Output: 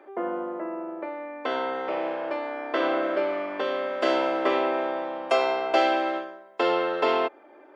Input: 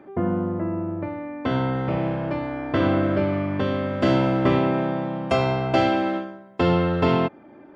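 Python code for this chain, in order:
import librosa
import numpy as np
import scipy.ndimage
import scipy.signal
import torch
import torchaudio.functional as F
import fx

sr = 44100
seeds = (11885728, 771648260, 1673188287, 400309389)

y = scipy.signal.sosfilt(scipy.signal.butter(4, 390.0, 'highpass', fs=sr, output='sos'), x)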